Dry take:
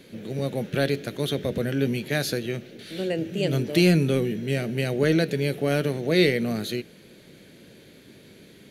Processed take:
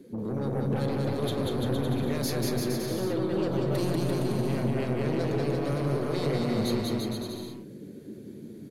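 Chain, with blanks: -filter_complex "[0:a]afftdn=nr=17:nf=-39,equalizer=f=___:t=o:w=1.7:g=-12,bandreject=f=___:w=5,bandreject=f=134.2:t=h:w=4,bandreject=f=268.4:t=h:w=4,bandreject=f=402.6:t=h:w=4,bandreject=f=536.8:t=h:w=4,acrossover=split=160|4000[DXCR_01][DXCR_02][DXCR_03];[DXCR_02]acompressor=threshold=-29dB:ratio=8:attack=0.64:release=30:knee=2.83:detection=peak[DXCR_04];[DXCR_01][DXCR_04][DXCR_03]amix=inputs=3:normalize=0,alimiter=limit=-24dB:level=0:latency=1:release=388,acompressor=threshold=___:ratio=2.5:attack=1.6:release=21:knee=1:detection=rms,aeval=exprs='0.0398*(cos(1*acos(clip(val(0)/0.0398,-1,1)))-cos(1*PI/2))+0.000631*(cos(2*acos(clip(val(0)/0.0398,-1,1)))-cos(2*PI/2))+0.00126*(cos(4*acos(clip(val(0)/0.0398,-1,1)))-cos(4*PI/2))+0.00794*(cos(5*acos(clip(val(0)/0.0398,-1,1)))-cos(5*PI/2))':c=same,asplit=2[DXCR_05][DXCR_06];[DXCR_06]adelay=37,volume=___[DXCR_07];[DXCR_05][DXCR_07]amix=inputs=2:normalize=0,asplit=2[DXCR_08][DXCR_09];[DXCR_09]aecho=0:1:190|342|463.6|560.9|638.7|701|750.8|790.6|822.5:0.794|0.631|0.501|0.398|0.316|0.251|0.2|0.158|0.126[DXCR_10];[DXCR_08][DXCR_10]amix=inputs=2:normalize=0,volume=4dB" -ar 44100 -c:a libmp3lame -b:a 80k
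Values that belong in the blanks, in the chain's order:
2800, 170, -38dB, -13dB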